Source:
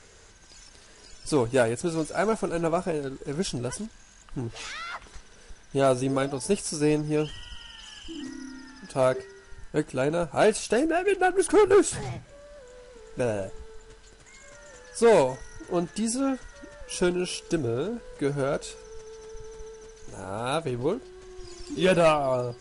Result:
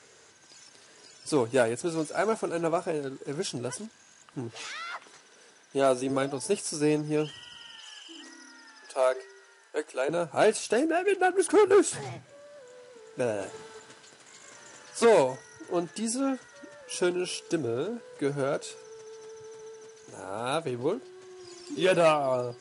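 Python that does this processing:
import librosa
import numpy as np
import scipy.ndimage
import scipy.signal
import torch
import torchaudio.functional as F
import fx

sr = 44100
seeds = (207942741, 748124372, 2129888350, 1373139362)

y = fx.highpass(x, sr, hz=190.0, slope=12, at=(4.64, 6.1))
y = fx.highpass(y, sr, hz=410.0, slope=24, at=(7.79, 10.09))
y = fx.spec_clip(y, sr, under_db=15, at=(13.39, 15.04), fade=0.02)
y = scipy.signal.sosfilt(scipy.signal.butter(4, 130.0, 'highpass', fs=sr, output='sos'), y)
y = fx.peak_eq(y, sr, hz=190.0, db=-13.5, octaves=0.2)
y = F.gain(torch.from_numpy(y), -1.5).numpy()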